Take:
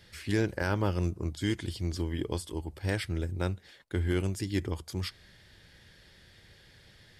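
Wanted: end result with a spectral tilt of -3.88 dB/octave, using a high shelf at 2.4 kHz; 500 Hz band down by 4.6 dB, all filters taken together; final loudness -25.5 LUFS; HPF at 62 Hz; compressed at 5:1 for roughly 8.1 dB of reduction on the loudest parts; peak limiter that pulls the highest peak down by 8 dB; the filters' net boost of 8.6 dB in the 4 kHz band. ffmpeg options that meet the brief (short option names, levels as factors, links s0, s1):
-af "highpass=62,equalizer=f=500:t=o:g=-7,highshelf=f=2400:g=8.5,equalizer=f=4000:t=o:g=3.5,acompressor=threshold=0.0224:ratio=5,volume=5.62,alimiter=limit=0.251:level=0:latency=1"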